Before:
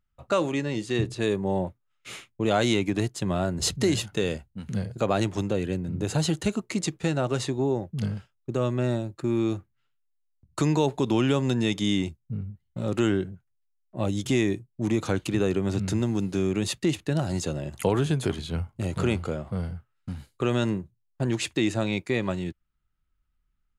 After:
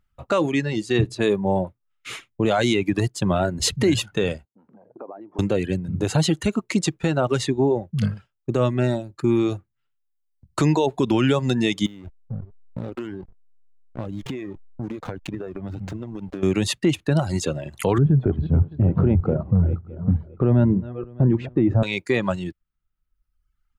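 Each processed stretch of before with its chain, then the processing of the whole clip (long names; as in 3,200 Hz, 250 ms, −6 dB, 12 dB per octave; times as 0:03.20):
0:04.45–0:05.39: downward compressor 12 to 1, threshold −37 dBFS + Chebyshev band-pass filter 300–980 Hz
0:11.86–0:16.43: slack as between gear wheels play −28.5 dBFS + downward compressor 12 to 1, threshold −32 dBFS + high-shelf EQ 4,100 Hz −7.5 dB
0:17.98–0:21.83: feedback delay that plays each chunk backwards 306 ms, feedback 45%, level −11.5 dB + low-pass filter 1,000 Hz + low-shelf EQ 250 Hz +11.5 dB
whole clip: reverb reduction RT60 1.2 s; bass and treble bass 0 dB, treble −4 dB; boost into a limiter +16.5 dB; level −9 dB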